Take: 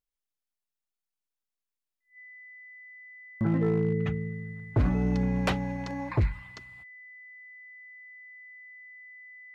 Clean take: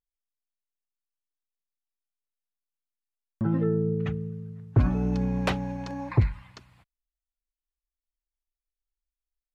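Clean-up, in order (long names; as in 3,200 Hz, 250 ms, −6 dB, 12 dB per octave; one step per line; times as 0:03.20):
clipped peaks rebuilt −19 dBFS
notch filter 2,000 Hz, Q 30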